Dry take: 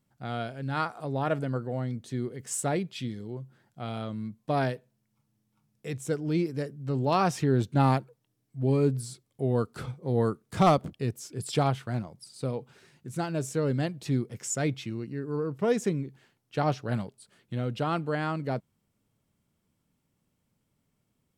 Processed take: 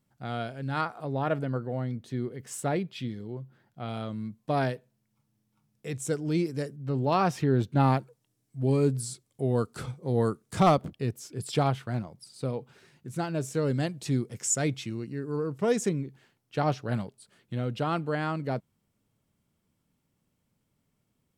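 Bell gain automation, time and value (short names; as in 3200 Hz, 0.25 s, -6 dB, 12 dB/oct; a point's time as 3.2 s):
bell 8000 Hz 1.3 oct
0 dB
from 0.81 s -7 dB
from 3.89 s 0 dB
from 5.94 s +6 dB
from 6.76 s -6 dB
from 7.99 s +6 dB
from 10.6 s -2 dB
from 13.55 s +6 dB
from 15.89 s -0.5 dB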